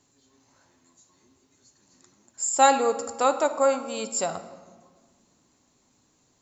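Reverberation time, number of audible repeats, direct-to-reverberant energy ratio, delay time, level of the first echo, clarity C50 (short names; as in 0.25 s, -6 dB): 1.6 s, none, 9.5 dB, none, none, 12.0 dB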